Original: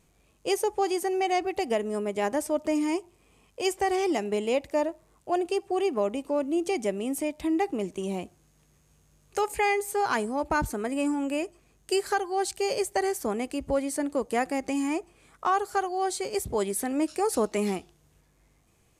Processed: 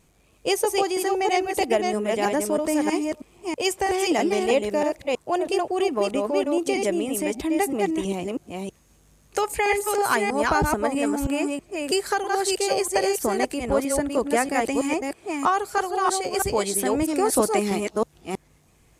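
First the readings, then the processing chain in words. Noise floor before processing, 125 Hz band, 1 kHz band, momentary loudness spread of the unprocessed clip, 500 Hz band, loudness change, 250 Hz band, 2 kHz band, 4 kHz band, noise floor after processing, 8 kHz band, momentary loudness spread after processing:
-65 dBFS, +6.0 dB, +4.5 dB, 5 LU, +4.5 dB, +4.5 dB, +4.0 dB, +6.0 dB, +7.0 dB, -59 dBFS, +7.5 dB, 7 LU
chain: reverse delay 0.322 s, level -2.5 dB; harmonic-percussive split percussive +5 dB; gain +1.5 dB

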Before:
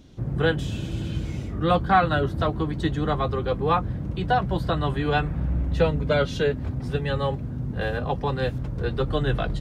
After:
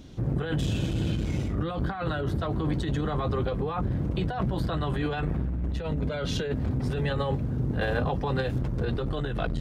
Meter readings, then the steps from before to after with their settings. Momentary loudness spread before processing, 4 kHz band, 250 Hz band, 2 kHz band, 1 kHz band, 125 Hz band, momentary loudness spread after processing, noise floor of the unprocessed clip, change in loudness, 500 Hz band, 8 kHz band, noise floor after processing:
8 LU, -4.5 dB, -1.5 dB, -6.5 dB, -9.5 dB, -1.5 dB, 2 LU, -32 dBFS, -4.0 dB, -6.0 dB, n/a, -32 dBFS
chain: negative-ratio compressor -27 dBFS, ratio -1; core saturation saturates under 230 Hz; gain +1 dB

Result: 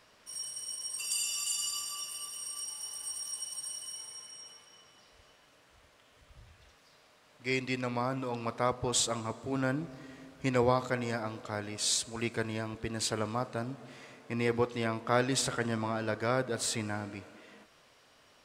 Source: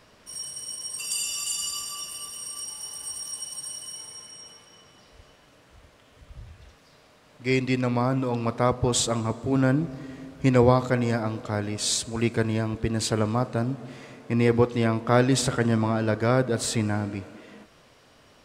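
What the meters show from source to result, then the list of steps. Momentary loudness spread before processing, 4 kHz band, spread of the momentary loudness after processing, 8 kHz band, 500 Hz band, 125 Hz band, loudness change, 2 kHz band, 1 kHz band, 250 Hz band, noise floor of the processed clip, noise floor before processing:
14 LU, -4.0 dB, 13 LU, -4.0 dB, -8.0 dB, -12.5 dB, -7.5 dB, -4.5 dB, -5.5 dB, -10.5 dB, -63 dBFS, -57 dBFS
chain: low shelf 450 Hz -9 dB; gain -4 dB

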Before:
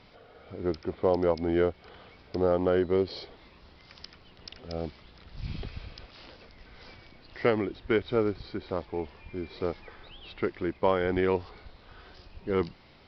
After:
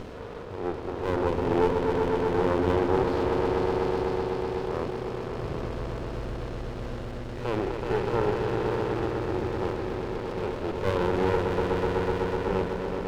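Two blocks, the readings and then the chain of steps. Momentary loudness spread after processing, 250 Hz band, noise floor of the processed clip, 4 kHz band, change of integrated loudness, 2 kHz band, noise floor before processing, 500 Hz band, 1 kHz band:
10 LU, +3.0 dB, -36 dBFS, +2.0 dB, +1.5 dB, +3.5 dB, -56 dBFS, +3.0 dB, +7.0 dB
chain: per-bin compression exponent 0.6; on a send: swelling echo 0.125 s, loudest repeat 5, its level -7 dB; on the sum: harmonic-percussive split percussive -17 dB; reverse; upward compressor, threshold -31 dBFS; reverse; LPF 2900 Hz 6 dB/oct; running maximum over 33 samples; gain +2 dB

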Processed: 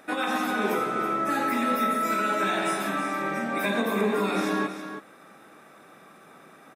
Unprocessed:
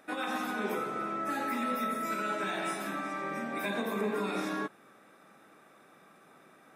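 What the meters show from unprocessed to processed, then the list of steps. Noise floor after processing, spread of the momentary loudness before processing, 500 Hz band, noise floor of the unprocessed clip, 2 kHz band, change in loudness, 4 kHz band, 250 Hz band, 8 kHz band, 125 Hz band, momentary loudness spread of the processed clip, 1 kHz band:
-52 dBFS, 4 LU, +7.5 dB, -59 dBFS, +7.5 dB, +7.5 dB, +7.5 dB, +7.5 dB, +7.5 dB, +7.5 dB, 4 LU, +7.5 dB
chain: echo 0.325 s -10 dB; gain +7 dB

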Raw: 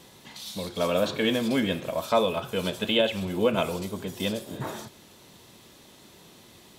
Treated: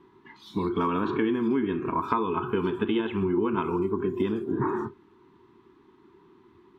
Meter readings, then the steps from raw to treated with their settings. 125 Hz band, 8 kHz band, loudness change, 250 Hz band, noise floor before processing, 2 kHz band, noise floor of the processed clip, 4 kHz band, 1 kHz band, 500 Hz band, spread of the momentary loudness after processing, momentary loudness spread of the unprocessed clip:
+0.5 dB, under -20 dB, -0.5 dB, +3.0 dB, -53 dBFS, -4.5 dB, -59 dBFS, -14.0 dB, +3.0 dB, -2.0 dB, 4 LU, 12 LU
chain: spectral noise reduction 15 dB; EQ curve 190 Hz 0 dB, 390 Hz +13 dB, 570 Hz -25 dB, 970 Hz +9 dB, 8400 Hz -28 dB; compressor 6:1, threshold -30 dBFS, peak gain reduction 14.5 dB; gain +7 dB

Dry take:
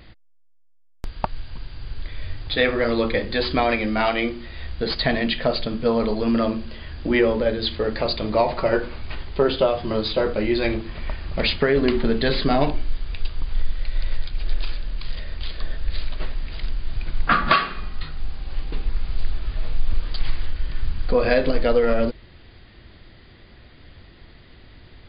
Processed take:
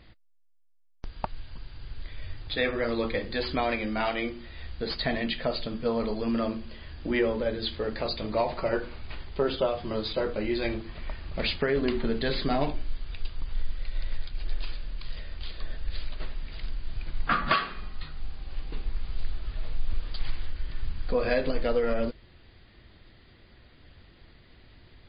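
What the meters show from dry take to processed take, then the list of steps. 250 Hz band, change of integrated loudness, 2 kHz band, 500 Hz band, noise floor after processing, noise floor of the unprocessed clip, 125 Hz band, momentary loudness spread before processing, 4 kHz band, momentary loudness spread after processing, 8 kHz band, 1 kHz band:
-7.5 dB, -7.5 dB, -7.0 dB, -7.5 dB, -57 dBFS, -49 dBFS, -7.5 dB, 15 LU, -7.0 dB, 15 LU, n/a, -7.5 dB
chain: gain -7 dB; MP3 24 kbps 24000 Hz

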